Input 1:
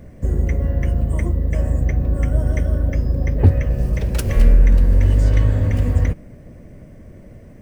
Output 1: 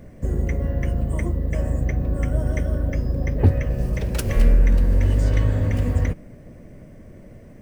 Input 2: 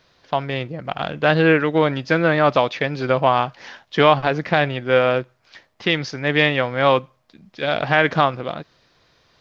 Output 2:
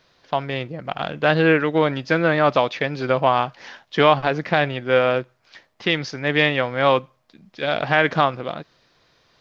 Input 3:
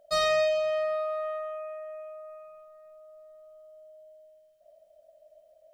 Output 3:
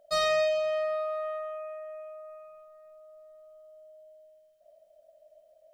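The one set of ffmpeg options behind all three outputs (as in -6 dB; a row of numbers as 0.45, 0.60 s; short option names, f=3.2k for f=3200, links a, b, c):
-af "equalizer=f=62:w=0.81:g=-4,volume=-1dB"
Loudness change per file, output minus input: -4.0, -1.0, -1.0 LU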